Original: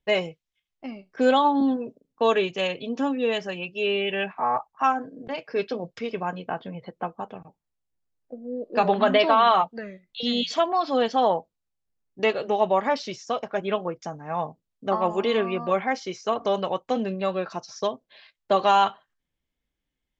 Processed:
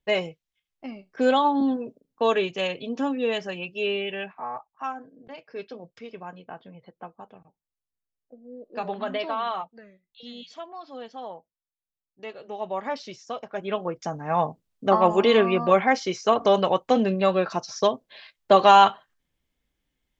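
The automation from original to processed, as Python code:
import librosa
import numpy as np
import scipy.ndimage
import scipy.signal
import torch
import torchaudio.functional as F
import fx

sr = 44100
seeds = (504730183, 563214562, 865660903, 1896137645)

y = fx.gain(x, sr, db=fx.line((3.83, -1.0), (4.55, -10.0), (9.41, -10.0), (10.35, -16.5), (12.22, -16.5), (12.9, -6.0), (13.48, -6.0), (14.19, 5.0)))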